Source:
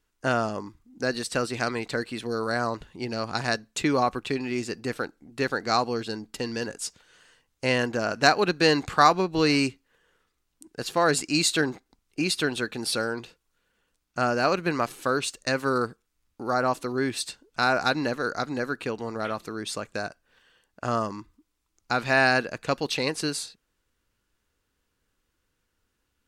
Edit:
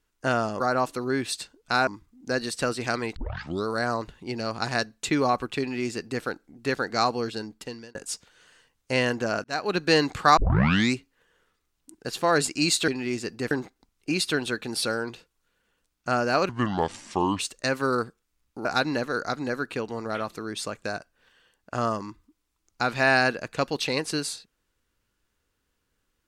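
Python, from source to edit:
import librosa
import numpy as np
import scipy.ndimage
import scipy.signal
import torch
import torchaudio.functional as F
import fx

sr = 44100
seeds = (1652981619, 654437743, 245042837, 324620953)

y = fx.edit(x, sr, fx.tape_start(start_s=1.89, length_s=0.5),
    fx.duplicate(start_s=4.33, length_s=0.63, to_s=11.61),
    fx.fade_out_span(start_s=5.92, length_s=0.76, curve='qsin'),
    fx.fade_in_span(start_s=8.17, length_s=0.38),
    fx.tape_start(start_s=9.1, length_s=0.58),
    fx.speed_span(start_s=14.59, length_s=0.63, speed=0.7),
    fx.move(start_s=16.48, length_s=1.27, to_s=0.6), tone=tone)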